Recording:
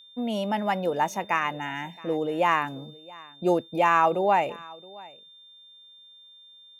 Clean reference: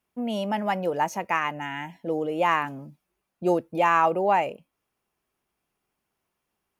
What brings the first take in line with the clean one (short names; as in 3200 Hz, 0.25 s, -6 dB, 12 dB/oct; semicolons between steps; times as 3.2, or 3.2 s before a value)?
notch 3600 Hz, Q 30; inverse comb 0.67 s -22.5 dB